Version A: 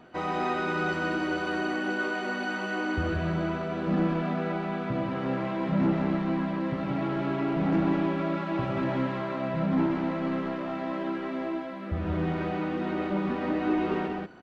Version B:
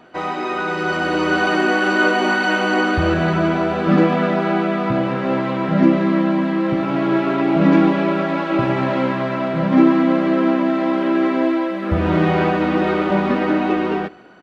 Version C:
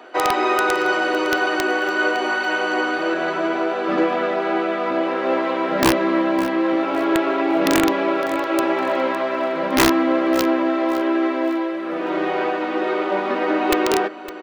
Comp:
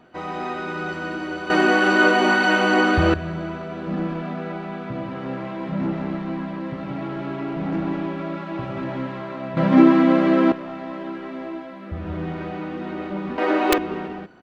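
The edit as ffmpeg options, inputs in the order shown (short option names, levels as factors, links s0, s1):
-filter_complex "[1:a]asplit=2[s0][s1];[0:a]asplit=4[s2][s3][s4][s5];[s2]atrim=end=1.502[s6];[s0]atrim=start=1.498:end=3.142[s7];[s3]atrim=start=3.138:end=9.572[s8];[s1]atrim=start=9.568:end=10.522[s9];[s4]atrim=start=10.518:end=13.382[s10];[2:a]atrim=start=13.378:end=13.782[s11];[s5]atrim=start=13.778[s12];[s6][s7]acrossfade=d=0.004:c1=hsin:c2=hsin[s13];[s13][s8]acrossfade=d=0.004:c1=hsin:c2=hsin[s14];[s14][s9]acrossfade=d=0.004:c1=hsin:c2=hsin[s15];[s15][s10]acrossfade=d=0.004:c1=hsin:c2=hsin[s16];[s16][s11]acrossfade=d=0.004:c1=hsin:c2=hsin[s17];[s17][s12]acrossfade=d=0.004:c1=hsin:c2=hsin"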